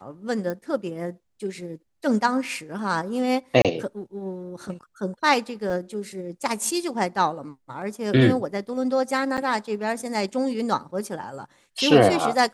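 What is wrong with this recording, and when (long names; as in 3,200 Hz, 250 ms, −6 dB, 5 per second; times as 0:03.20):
0:00.50: click −18 dBFS
0:03.62–0:03.65: drop-out 27 ms
0:05.70: drop-out 2.8 ms
0:09.37–0:09.38: drop-out 8.2 ms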